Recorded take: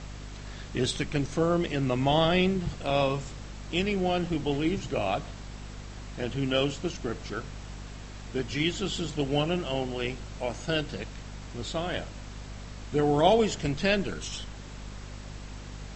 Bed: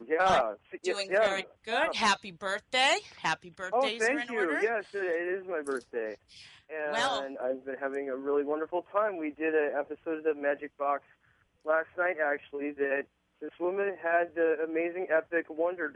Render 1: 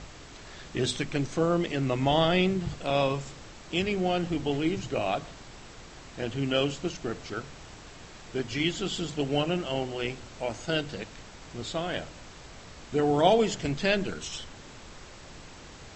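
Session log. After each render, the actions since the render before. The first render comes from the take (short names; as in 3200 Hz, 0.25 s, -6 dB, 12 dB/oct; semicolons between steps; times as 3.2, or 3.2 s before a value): notches 50/100/150/200/250 Hz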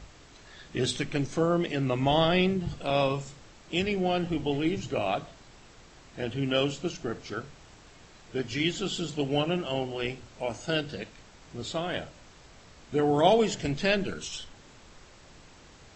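noise print and reduce 6 dB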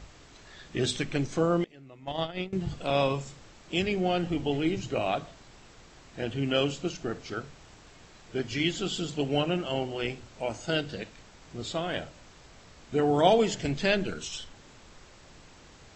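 1.64–2.53 gate -22 dBFS, range -22 dB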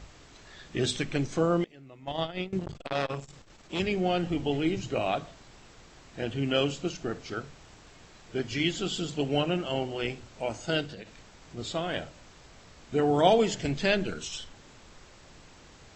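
2.59–3.8 core saturation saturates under 1500 Hz; 10.86–11.57 compressor, threshold -38 dBFS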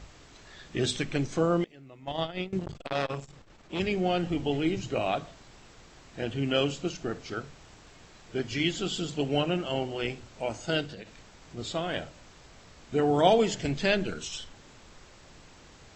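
3.28–3.81 high shelf 4300 Hz -9 dB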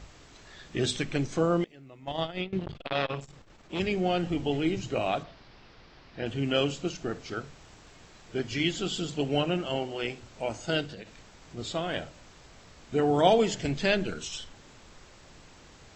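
2.41–3.21 synth low-pass 3500 Hz, resonance Q 1.6; 5.23–6.26 Chebyshev low-pass 5100 Hz, order 4; 9.77–10.22 low shelf 150 Hz -7.5 dB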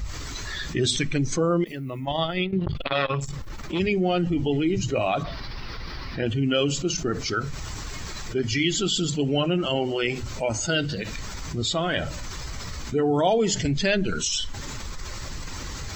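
per-bin expansion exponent 1.5; fast leveller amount 70%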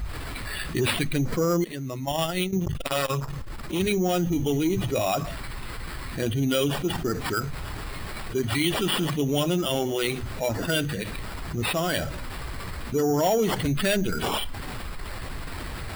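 sample-rate reducer 6300 Hz, jitter 0%; soft clip -13.5 dBFS, distortion -22 dB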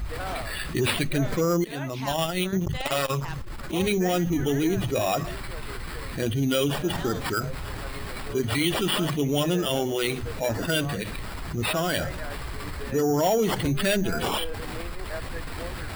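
add bed -10 dB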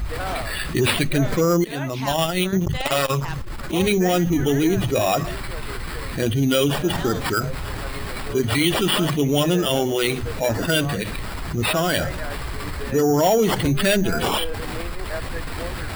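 gain +5 dB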